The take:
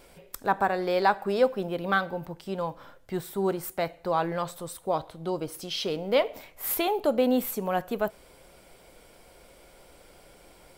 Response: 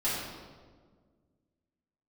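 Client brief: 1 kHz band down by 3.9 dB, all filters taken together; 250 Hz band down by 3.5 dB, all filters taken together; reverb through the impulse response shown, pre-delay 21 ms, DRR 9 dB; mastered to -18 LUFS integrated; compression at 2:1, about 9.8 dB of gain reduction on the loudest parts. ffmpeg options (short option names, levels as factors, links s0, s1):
-filter_complex "[0:a]equalizer=f=250:t=o:g=-4.5,equalizer=f=1000:t=o:g=-5,acompressor=threshold=0.0126:ratio=2,asplit=2[s0][s1];[1:a]atrim=start_sample=2205,adelay=21[s2];[s1][s2]afir=irnorm=-1:irlink=0,volume=0.133[s3];[s0][s3]amix=inputs=2:normalize=0,volume=8.91"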